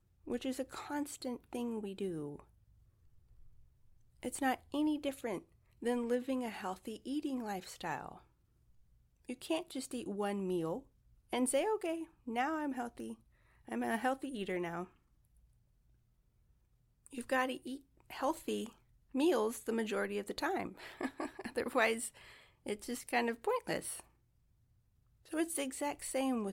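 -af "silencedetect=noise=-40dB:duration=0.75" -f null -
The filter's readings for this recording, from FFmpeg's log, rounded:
silence_start: 2.40
silence_end: 4.23 | silence_duration: 1.84
silence_start: 8.12
silence_end: 9.29 | silence_duration: 1.17
silence_start: 14.84
silence_end: 17.06 | silence_duration: 2.23
silence_start: 24.00
silence_end: 25.33 | silence_duration: 1.33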